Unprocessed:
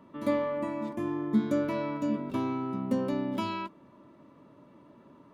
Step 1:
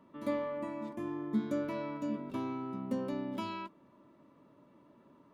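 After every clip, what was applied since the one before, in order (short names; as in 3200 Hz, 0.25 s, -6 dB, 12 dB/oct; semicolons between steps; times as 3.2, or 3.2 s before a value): bell 97 Hz -2.5 dB 1.2 oct; gain -6 dB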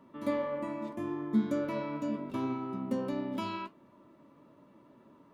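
flange 0.81 Hz, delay 7.2 ms, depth 7.6 ms, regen +76%; gain +7 dB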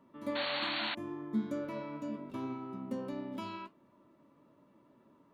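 painted sound noise, 0.35–0.95, 650–4500 Hz -31 dBFS; gain -5.5 dB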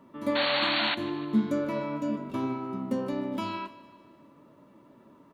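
feedback echo 0.151 s, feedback 57%, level -18 dB; gain +8.5 dB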